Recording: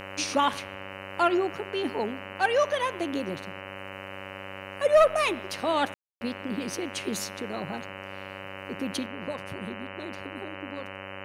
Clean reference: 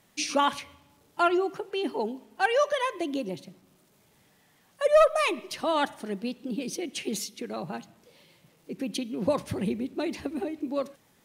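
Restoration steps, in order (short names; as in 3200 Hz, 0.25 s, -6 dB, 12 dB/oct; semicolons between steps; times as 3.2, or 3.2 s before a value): de-hum 97 Hz, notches 31; notch 560 Hz, Q 30; room tone fill 5.94–6.21; gain correction +9.5 dB, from 9.06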